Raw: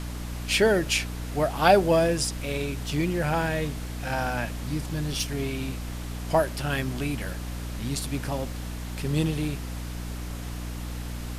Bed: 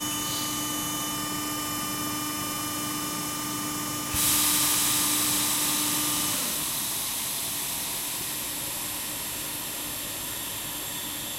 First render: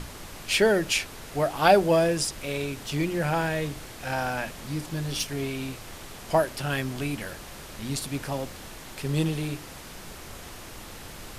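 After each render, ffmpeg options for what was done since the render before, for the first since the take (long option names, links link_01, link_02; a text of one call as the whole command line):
ffmpeg -i in.wav -af "bandreject=frequency=60:width_type=h:width=6,bandreject=frequency=120:width_type=h:width=6,bandreject=frequency=180:width_type=h:width=6,bandreject=frequency=240:width_type=h:width=6,bandreject=frequency=300:width_type=h:width=6" out.wav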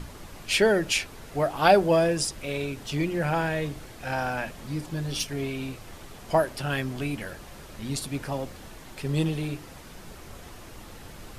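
ffmpeg -i in.wav -af "afftdn=noise_reduction=6:noise_floor=-43" out.wav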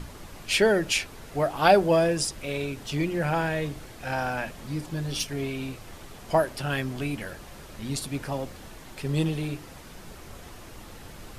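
ffmpeg -i in.wav -af anull out.wav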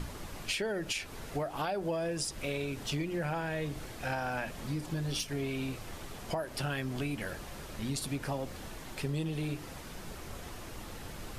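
ffmpeg -i in.wav -af "alimiter=limit=-18dB:level=0:latency=1:release=234,acompressor=threshold=-31dB:ratio=6" out.wav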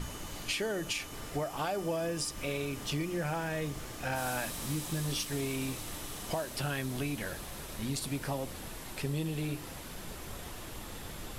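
ffmpeg -i in.wav -i bed.wav -filter_complex "[1:a]volume=-18.5dB[link_01];[0:a][link_01]amix=inputs=2:normalize=0" out.wav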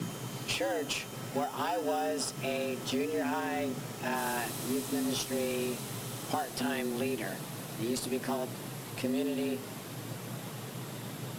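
ffmpeg -i in.wav -filter_complex "[0:a]afreqshift=110,asplit=2[link_01][link_02];[link_02]acrusher=samples=20:mix=1:aa=0.000001,volume=-10dB[link_03];[link_01][link_03]amix=inputs=2:normalize=0" out.wav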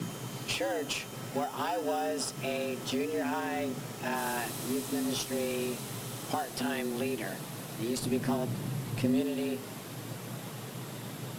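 ffmpeg -i in.wav -filter_complex "[0:a]asettb=1/sr,asplit=3[link_01][link_02][link_03];[link_01]atrim=end=8.004[link_04];[link_02]atrim=start=8:end=9.21,asetpts=PTS-STARTPTS,afade=type=in:duration=0.004:curve=qsin,afade=type=out:start_time=1.206:duration=0.004:curve=qsin,bass=frequency=250:gain=10,treble=frequency=4000:gain=-1[link_05];[link_03]atrim=start=9.206[link_06];[link_04][link_05]acrossfade=duration=0.004:curve1=hsin:curve2=qsin[link_07];[link_07][link_06]acrossfade=duration=0.004:curve1=qsin:curve2=hsin" out.wav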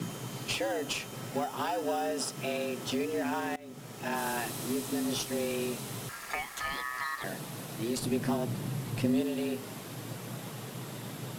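ffmpeg -i in.wav -filter_complex "[0:a]asettb=1/sr,asplit=3[link_01][link_02][link_03];[link_01]atrim=end=2.114[link_04];[link_02]atrim=start=2.11:end=2.87,asetpts=PTS-STARTPTS,afade=type=in:duration=0.004:curve=qsin,afade=type=out:start_time=0.756:duration=0.004:curve=qsin,highpass=110[link_05];[link_03]atrim=start=2.866[link_06];[link_04][link_05]acrossfade=duration=0.004:curve1=hsin:curve2=qsin[link_07];[link_07][link_06]acrossfade=duration=0.004:curve1=qsin:curve2=hsin,asettb=1/sr,asplit=3[link_08][link_09][link_10];[link_08]atrim=end=6.094[link_11];[link_09]atrim=start=6.09:end=7.24,asetpts=PTS-STARTPTS,afade=type=in:duration=0.004:curve=qsin,afade=type=out:start_time=1.146:duration=0.004:curve=qsin,aeval=exprs='val(0)*sin(2*PI*1500*n/s)':channel_layout=same[link_12];[link_10]atrim=start=7.236[link_13];[link_11][link_12]acrossfade=duration=0.004:curve1=hsin:curve2=qsin[link_14];[link_14][link_13]acrossfade=duration=0.004:curve1=qsin:curve2=hsin,asplit=2[link_15][link_16];[link_15]atrim=end=3.56,asetpts=PTS-STARTPTS,afade=type=out:start_time=3.556:duration=0.004:curve=hsin:silence=0.0707946[link_17];[link_16]atrim=start=3.56,asetpts=PTS-STARTPTS,afade=type=in:duration=0.59:silence=0.0707946[link_18];[link_17][link_18]concat=n=2:v=0:a=1" out.wav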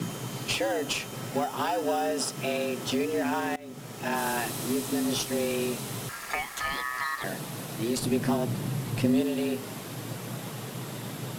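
ffmpeg -i in.wav -af "volume=4dB" out.wav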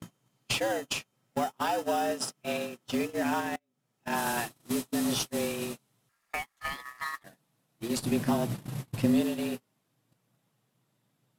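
ffmpeg -i in.wav -af "equalizer=frequency=410:width_type=o:width=0.42:gain=-4.5,agate=range=-37dB:threshold=-29dB:ratio=16:detection=peak" out.wav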